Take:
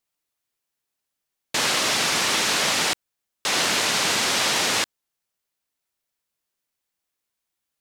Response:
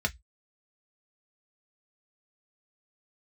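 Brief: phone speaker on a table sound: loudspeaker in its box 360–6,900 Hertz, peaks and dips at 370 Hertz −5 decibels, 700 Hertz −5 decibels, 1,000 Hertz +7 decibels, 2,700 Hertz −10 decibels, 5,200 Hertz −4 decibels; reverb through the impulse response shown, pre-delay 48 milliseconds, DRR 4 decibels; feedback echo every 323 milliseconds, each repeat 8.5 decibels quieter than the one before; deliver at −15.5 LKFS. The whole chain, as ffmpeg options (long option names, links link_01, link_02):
-filter_complex "[0:a]aecho=1:1:323|646|969|1292:0.376|0.143|0.0543|0.0206,asplit=2[link_01][link_02];[1:a]atrim=start_sample=2205,adelay=48[link_03];[link_02][link_03]afir=irnorm=-1:irlink=0,volume=-11.5dB[link_04];[link_01][link_04]amix=inputs=2:normalize=0,highpass=frequency=360:width=0.5412,highpass=frequency=360:width=1.3066,equalizer=frequency=370:width_type=q:width=4:gain=-5,equalizer=frequency=700:width_type=q:width=4:gain=-5,equalizer=frequency=1000:width_type=q:width=4:gain=7,equalizer=frequency=2700:width_type=q:width=4:gain=-10,equalizer=frequency=5200:width_type=q:width=4:gain=-4,lowpass=frequency=6900:width=0.5412,lowpass=frequency=6900:width=1.3066,volume=6dB"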